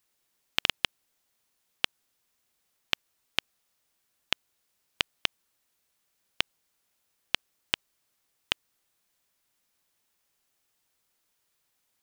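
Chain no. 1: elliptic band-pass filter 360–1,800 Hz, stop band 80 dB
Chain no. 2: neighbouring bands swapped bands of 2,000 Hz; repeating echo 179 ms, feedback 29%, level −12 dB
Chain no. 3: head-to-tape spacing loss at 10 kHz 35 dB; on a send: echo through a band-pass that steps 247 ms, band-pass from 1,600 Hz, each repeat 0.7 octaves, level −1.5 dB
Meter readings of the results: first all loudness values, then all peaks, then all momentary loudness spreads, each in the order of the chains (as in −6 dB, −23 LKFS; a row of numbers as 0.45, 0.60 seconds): −43.0, −34.5, −42.5 LKFS; −13.0, −2.0, −10.5 dBFS; 5, 16, 11 LU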